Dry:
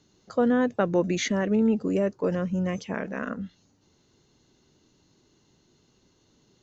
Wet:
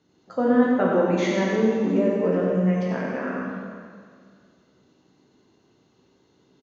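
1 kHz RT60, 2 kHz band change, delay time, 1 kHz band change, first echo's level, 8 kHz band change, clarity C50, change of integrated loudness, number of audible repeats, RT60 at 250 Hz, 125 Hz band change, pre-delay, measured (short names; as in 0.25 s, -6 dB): 2.0 s, +3.0 dB, 93 ms, +4.5 dB, -6.0 dB, n/a, -2.0 dB, +3.5 dB, 1, 2.0 s, +3.5 dB, 8 ms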